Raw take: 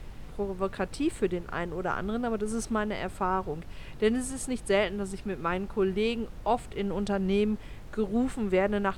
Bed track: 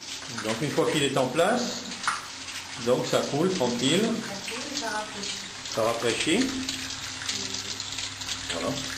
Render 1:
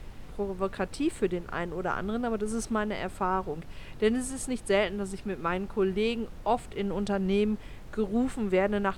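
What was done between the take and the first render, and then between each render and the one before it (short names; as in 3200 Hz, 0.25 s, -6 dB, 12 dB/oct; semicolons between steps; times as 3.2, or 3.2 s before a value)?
de-hum 50 Hz, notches 3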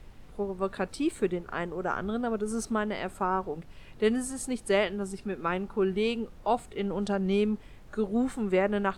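noise print and reduce 6 dB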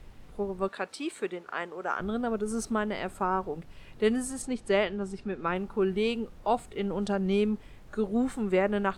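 0.68–2 weighting filter A; 4.42–5.56 air absorption 64 m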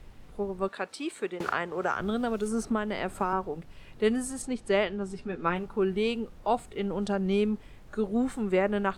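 1.4–3.33 three-band squash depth 100%; 5.08–5.67 doubler 12 ms -6 dB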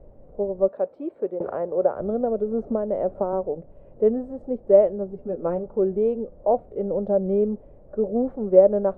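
synth low-pass 570 Hz, resonance Q 5.7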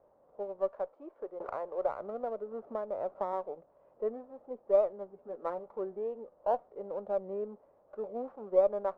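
band-pass 1100 Hz, Q 2.4; running maximum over 3 samples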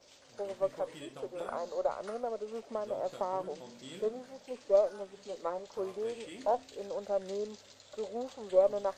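add bed track -24 dB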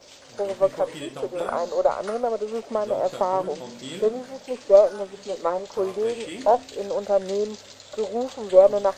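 gain +11.5 dB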